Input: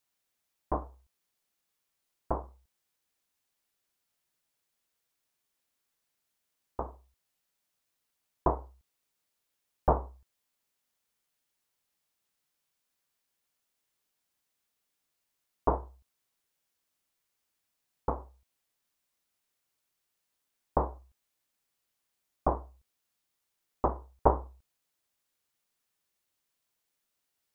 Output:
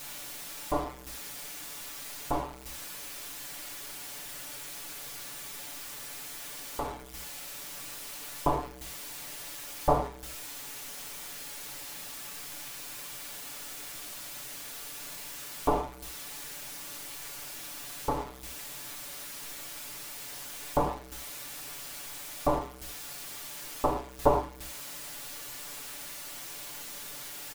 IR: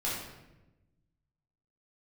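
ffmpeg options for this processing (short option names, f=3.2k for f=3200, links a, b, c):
-filter_complex "[0:a]aeval=exprs='val(0)+0.5*0.0158*sgn(val(0))':c=same,aecho=1:1:6.9:0.83,asplit=2[a][b];[1:a]atrim=start_sample=2205,atrim=end_sample=3528,asetrate=29547,aresample=44100[c];[b][c]afir=irnorm=-1:irlink=0,volume=-8.5dB[d];[a][d]amix=inputs=2:normalize=0,volume=-4.5dB"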